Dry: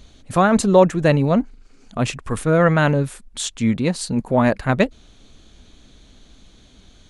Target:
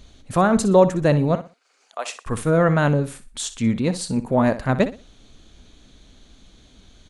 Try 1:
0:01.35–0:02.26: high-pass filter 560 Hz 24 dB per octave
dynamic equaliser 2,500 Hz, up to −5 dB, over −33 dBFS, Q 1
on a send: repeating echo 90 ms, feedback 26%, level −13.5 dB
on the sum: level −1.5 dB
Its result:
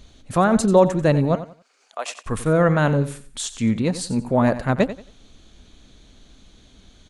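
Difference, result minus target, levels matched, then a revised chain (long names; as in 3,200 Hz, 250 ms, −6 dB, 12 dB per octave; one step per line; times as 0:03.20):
echo 29 ms late
0:01.35–0:02.26: high-pass filter 560 Hz 24 dB per octave
dynamic equaliser 2,500 Hz, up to −5 dB, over −33 dBFS, Q 1
on a send: repeating echo 61 ms, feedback 26%, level −13.5 dB
on the sum: level −1.5 dB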